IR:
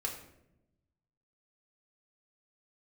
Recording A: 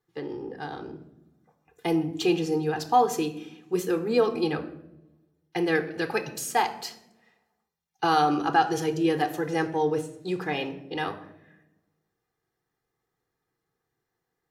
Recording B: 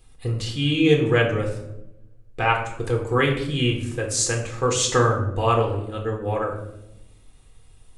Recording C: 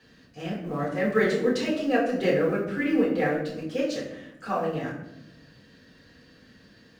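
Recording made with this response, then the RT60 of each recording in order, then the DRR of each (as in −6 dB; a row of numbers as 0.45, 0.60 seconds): B; non-exponential decay, 0.85 s, 0.85 s; 7.0, −0.5, −7.0 decibels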